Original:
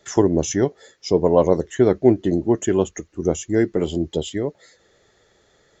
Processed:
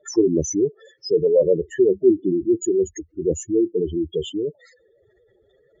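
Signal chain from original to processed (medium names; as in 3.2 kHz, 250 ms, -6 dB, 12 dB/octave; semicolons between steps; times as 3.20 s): spectral contrast enhancement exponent 3.4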